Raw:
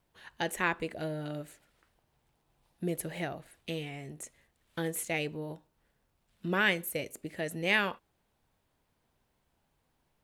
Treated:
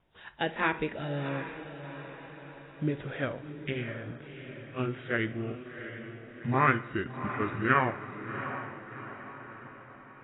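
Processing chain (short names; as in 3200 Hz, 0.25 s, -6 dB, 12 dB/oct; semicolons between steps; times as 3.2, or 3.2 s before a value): gliding pitch shift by -10 st starting unshifted; on a send: diffused feedback echo 0.724 s, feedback 51%, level -10 dB; on the sum: spring tank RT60 1 s, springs 55 ms, chirp 50 ms, DRR 17.5 dB; gain +4 dB; AAC 16 kbps 16000 Hz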